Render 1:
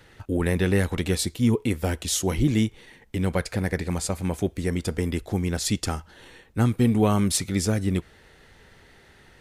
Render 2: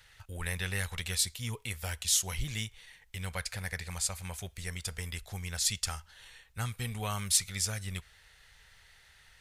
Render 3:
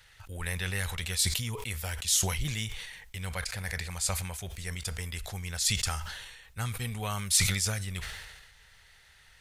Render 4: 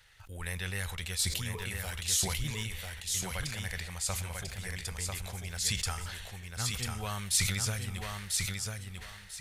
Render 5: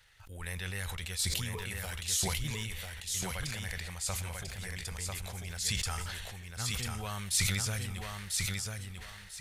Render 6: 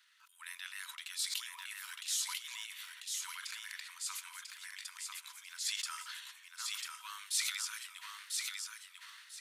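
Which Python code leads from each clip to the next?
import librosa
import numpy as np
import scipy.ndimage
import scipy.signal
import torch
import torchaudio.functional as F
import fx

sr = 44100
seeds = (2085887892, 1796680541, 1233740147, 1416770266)

y1 = fx.tone_stack(x, sr, knobs='10-0-10')
y2 = fx.sustainer(y1, sr, db_per_s=42.0)
y2 = y2 * 10.0 ** (1.0 / 20.0)
y3 = fx.echo_feedback(y2, sr, ms=994, feedback_pct=23, wet_db=-4)
y3 = y3 * 10.0 ** (-3.5 / 20.0)
y4 = fx.sustainer(y3, sr, db_per_s=23.0)
y4 = y4 * 10.0 ** (-2.5 / 20.0)
y5 = scipy.signal.sosfilt(scipy.signal.cheby1(6, 3, 960.0, 'highpass', fs=sr, output='sos'), y4)
y5 = y5 * 10.0 ** (-2.5 / 20.0)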